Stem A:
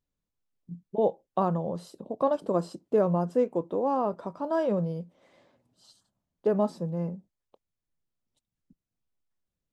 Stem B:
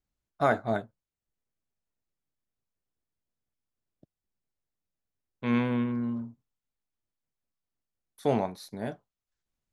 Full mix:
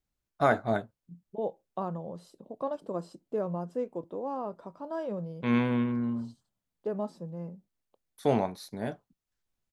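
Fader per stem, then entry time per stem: -8.0 dB, +0.5 dB; 0.40 s, 0.00 s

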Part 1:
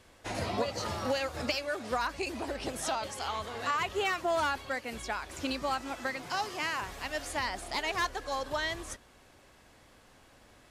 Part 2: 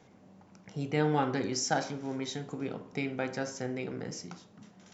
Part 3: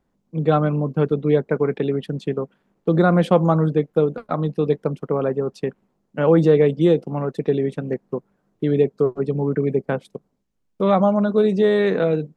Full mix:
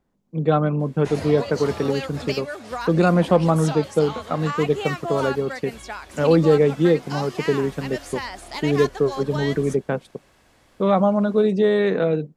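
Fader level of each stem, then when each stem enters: +1.5 dB, mute, -1.0 dB; 0.80 s, mute, 0.00 s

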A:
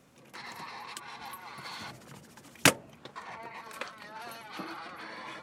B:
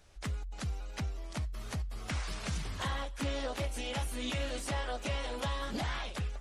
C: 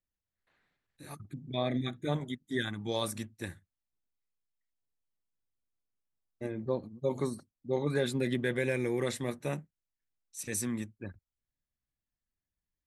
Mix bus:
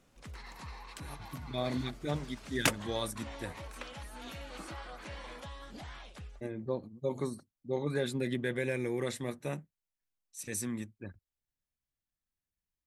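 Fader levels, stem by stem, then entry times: -7.0 dB, -11.0 dB, -2.5 dB; 0.00 s, 0.00 s, 0.00 s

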